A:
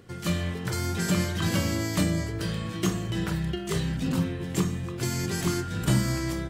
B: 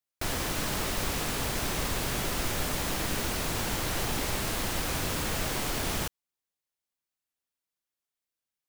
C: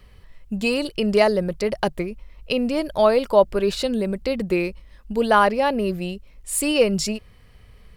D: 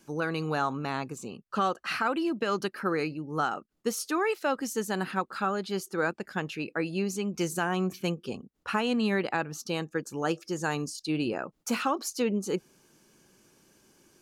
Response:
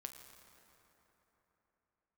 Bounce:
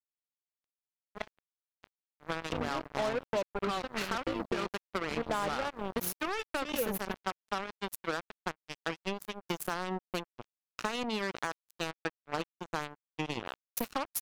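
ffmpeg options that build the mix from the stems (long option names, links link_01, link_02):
-filter_complex "[1:a]acrossover=split=480|3000[link_01][link_02][link_03];[link_02]acompressor=threshold=-39dB:ratio=6[link_04];[link_01][link_04][link_03]amix=inputs=3:normalize=0,equalizer=frequency=3600:width=1.4:gain=7.5,adelay=50,volume=-16.5dB[link_05];[2:a]aemphasis=mode=reproduction:type=75fm,volume=-9.5dB,afade=type=in:start_time=2.1:duration=0.63:silence=0.375837,asplit=2[link_06][link_07];[link_07]volume=-11.5dB[link_08];[3:a]highshelf=frequency=3700:gain=7,aexciter=amount=6.9:drive=8.2:freq=11000,aemphasis=mode=reproduction:type=cd,adelay=2100,volume=-1.5dB,asplit=2[link_09][link_10];[link_10]volume=-19.5dB[link_11];[4:a]atrim=start_sample=2205[link_12];[link_08][link_11]amix=inputs=2:normalize=0[link_13];[link_13][link_12]afir=irnorm=-1:irlink=0[link_14];[link_05][link_06][link_09][link_14]amix=inputs=4:normalize=0,afftdn=noise_reduction=22:noise_floor=-41,acrusher=bits=3:mix=0:aa=0.5,acompressor=threshold=-29dB:ratio=6"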